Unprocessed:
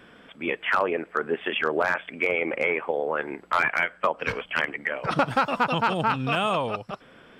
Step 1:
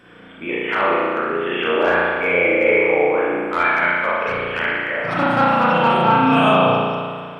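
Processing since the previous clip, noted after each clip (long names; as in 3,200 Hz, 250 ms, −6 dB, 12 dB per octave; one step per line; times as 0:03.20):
harmonic and percussive parts rebalanced percussive −7 dB
mains-hum notches 50/100/150 Hz
spring reverb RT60 1.9 s, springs 34 ms, chirp 30 ms, DRR −8.5 dB
level +2.5 dB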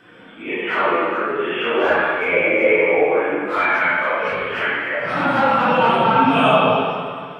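random phases in long frames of 100 ms
low-shelf EQ 110 Hz −8.5 dB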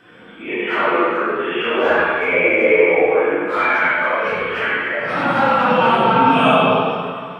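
reverb whose tail is shaped and stops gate 110 ms rising, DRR 4.5 dB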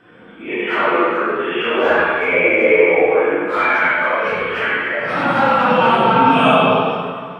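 one half of a high-frequency compander decoder only
level +1 dB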